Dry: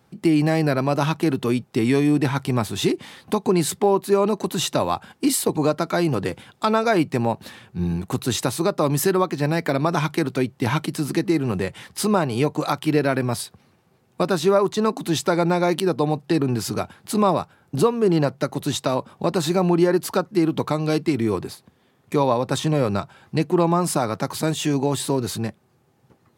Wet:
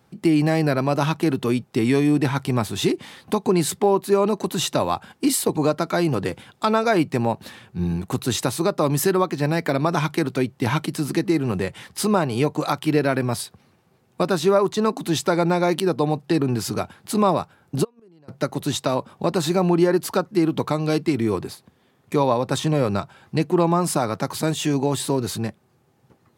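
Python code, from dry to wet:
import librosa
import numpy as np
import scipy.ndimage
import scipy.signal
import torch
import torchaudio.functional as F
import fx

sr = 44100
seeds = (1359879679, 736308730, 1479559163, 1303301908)

y = fx.gate_flip(x, sr, shuts_db=-19.0, range_db=-34, at=(17.83, 18.28), fade=0.02)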